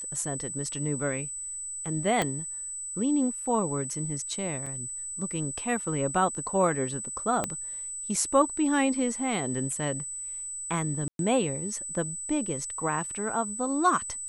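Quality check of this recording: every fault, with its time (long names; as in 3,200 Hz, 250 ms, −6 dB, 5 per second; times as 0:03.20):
whistle 8,000 Hz −34 dBFS
0:02.22: click −12 dBFS
0:04.66–0:04.67: drop-out 5 ms
0:07.44: click −13 dBFS
0:11.08–0:11.19: drop-out 112 ms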